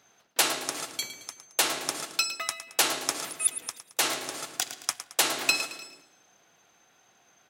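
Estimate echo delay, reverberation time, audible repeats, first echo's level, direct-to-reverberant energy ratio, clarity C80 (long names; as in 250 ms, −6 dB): 110 ms, no reverb audible, 3, −12.0 dB, no reverb audible, no reverb audible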